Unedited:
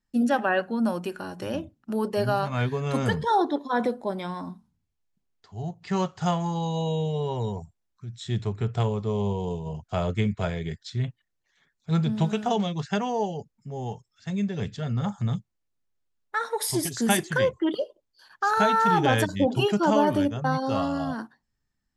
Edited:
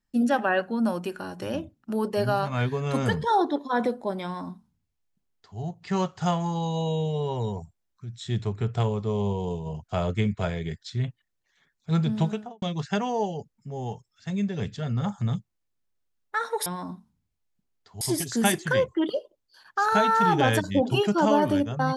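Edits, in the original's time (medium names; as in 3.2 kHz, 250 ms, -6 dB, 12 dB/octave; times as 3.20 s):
4.24–5.59 s: copy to 16.66 s
12.18–12.62 s: studio fade out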